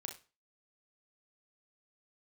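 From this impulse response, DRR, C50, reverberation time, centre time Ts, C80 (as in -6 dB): 4.0 dB, 10.0 dB, no single decay rate, 15 ms, 17.0 dB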